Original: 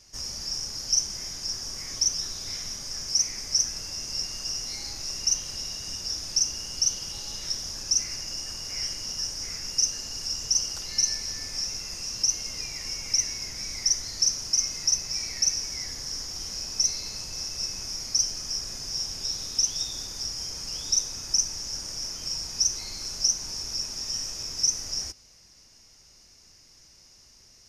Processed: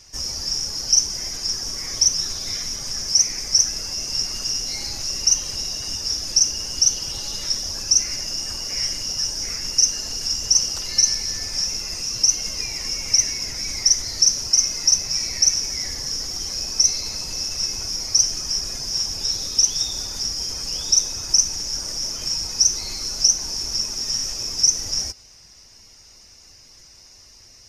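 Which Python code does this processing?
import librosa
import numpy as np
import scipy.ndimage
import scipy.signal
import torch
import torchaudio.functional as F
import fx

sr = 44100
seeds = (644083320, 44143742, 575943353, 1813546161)

y = fx.spec_quant(x, sr, step_db=15)
y = y * librosa.db_to_amplitude(7.5)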